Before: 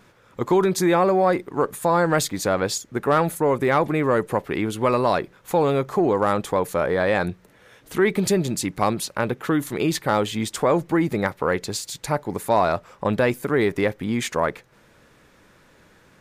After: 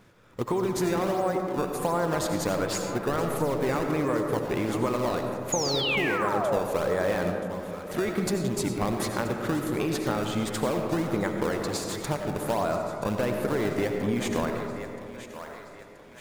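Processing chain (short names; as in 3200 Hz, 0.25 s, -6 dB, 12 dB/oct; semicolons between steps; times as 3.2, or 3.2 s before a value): thinning echo 0.978 s, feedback 57%, high-pass 570 Hz, level -14.5 dB; in parallel at -5.5 dB: decimation with a swept rate 24×, swing 160% 1.4 Hz; on the sum: painted sound fall, 5.52–6.6, 440–7000 Hz -18 dBFS; compressor, threshold -19 dBFS, peak gain reduction 9 dB; digital reverb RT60 2.4 s, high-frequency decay 0.25×, pre-delay 50 ms, DRR 3.5 dB; gain -5.5 dB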